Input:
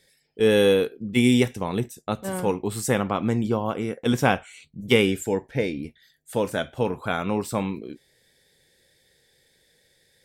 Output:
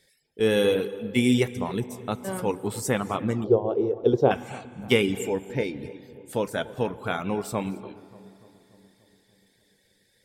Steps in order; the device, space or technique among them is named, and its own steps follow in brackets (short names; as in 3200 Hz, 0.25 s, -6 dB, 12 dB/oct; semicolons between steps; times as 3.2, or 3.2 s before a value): non-linear reverb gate 0.31 s flat, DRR 10 dB; reverb removal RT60 0.62 s; dub delay into a spring reverb (darkening echo 0.292 s, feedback 66%, low-pass 1200 Hz, level -18 dB; spring tank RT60 3.4 s, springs 31 ms, chirp 80 ms, DRR 19.5 dB); 3.44–4.31 EQ curve 130 Hz 0 dB, 240 Hz -5 dB, 390 Hz +13 dB, 2100 Hz -20 dB, 3800 Hz -7 dB, 5800 Hz -14 dB, 8400 Hz -28 dB; gain -2 dB